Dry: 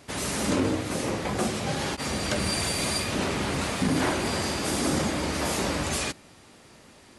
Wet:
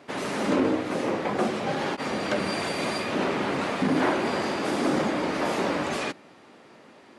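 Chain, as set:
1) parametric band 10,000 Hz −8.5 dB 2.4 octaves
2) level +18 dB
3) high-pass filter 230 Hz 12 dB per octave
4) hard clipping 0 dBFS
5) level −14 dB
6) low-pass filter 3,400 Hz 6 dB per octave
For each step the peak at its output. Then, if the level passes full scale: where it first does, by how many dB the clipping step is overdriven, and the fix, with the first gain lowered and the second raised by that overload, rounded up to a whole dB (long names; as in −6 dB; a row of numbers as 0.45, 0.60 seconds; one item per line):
−15.5, +2.5, +3.5, 0.0, −14.0, −14.0 dBFS
step 2, 3.5 dB
step 2 +14 dB, step 5 −10 dB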